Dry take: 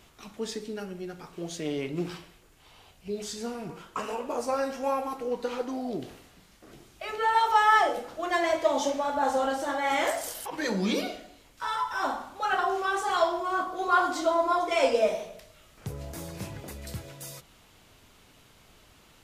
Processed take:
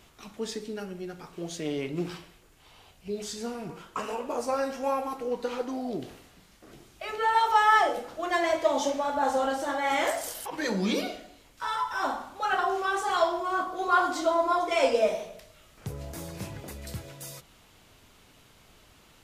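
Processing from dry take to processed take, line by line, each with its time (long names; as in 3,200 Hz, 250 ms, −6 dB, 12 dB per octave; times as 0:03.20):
nothing changes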